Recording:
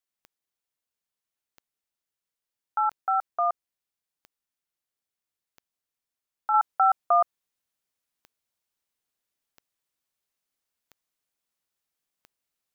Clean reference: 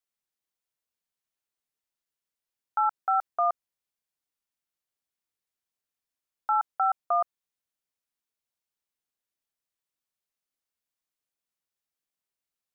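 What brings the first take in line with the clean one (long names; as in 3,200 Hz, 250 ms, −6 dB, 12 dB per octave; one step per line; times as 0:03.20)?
click removal
level 0 dB, from 0:06.54 −4.5 dB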